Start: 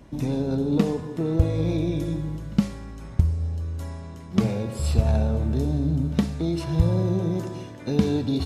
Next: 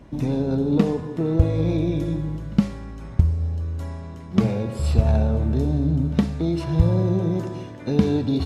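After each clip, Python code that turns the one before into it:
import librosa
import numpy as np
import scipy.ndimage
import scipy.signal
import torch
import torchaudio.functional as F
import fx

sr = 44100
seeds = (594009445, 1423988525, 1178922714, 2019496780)

y = fx.high_shelf(x, sr, hz=4900.0, db=-8.5)
y = y * librosa.db_to_amplitude(2.5)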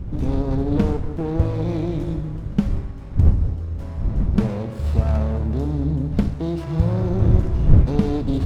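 y = fx.dmg_wind(x, sr, seeds[0], corner_hz=80.0, level_db=-20.0)
y = fx.running_max(y, sr, window=17)
y = y * librosa.db_to_amplitude(-1.0)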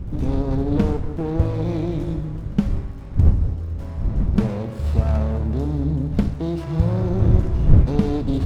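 y = fx.dmg_crackle(x, sr, seeds[1], per_s=47.0, level_db=-46.0)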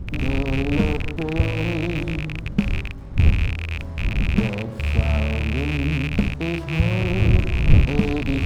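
y = fx.rattle_buzz(x, sr, strikes_db=-24.0, level_db=-16.0)
y = y * librosa.db_to_amplitude(-1.0)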